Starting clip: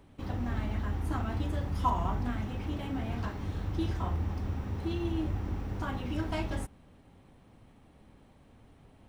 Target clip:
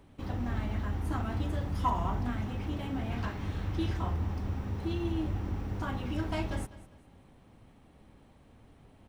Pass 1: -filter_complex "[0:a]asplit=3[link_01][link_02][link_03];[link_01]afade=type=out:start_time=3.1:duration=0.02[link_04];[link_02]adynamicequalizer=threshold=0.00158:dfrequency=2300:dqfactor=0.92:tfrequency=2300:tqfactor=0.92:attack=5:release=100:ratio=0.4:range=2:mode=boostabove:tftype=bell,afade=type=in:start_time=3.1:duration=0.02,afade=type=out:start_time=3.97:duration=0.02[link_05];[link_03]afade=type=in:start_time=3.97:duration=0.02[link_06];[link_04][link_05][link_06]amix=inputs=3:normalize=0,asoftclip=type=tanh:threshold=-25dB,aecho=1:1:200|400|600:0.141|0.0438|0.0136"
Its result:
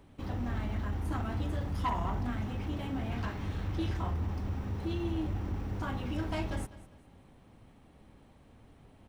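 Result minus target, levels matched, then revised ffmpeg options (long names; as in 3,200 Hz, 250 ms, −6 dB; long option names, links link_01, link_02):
soft clipping: distortion +13 dB
-filter_complex "[0:a]asplit=3[link_01][link_02][link_03];[link_01]afade=type=out:start_time=3.1:duration=0.02[link_04];[link_02]adynamicequalizer=threshold=0.00158:dfrequency=2300:dqfactor=0.92:tfrequency=2300:tqfactor=0.92:attack=5:release=100:ratio=0.4:range=2:mode=boostabove:tftype=bell,afade=type=in:start_time=3.1:duration=0.02,afade=type=out:start_time=3.97:duration=0.02[link_05];[link_03]afade=type=in:start_time=3.97:duration=0.02[link_06];[link_04][link_05][link_06]amix=inputs=3:normalize=0,asoftclip=type=tanh:threshold=-16dB,aecho=1:1:200|400|600:0.141|0.0438|0.0136"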